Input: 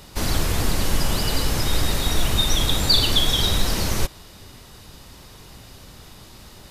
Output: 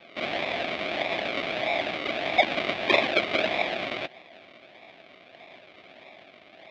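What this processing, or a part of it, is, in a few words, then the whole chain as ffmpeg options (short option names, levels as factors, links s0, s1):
circuit-bent sampling toy: -af "acrusher=samples=41:mix=1:aa=0.000001:lfo=1:lforange=24.6:lforate=1.6,highpass=460,equalizer=f=460:t=q:w=4:g=-9,equalizer=f=660:t=q:w=4:g=8,equalizer=f=940:t=q:w=4:g=-7,equalizer=f=1400:t=q:w=4:g=-5,equalizer=f=2300:t=q:w=4:g=10,equalizer=f=3500:t=q:w=4:g=7,lowpass=f=4100:w=0.5412,lowpass=f=4100:w=1.3066"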